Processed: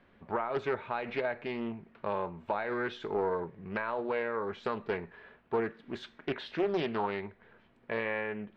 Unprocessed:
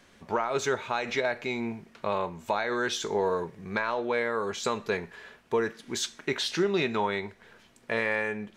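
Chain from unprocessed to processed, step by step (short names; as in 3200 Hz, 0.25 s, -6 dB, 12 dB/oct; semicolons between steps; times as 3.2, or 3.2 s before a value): air absorption 460 m; Doppler distortion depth 0.4 ms; gain -2.5 dB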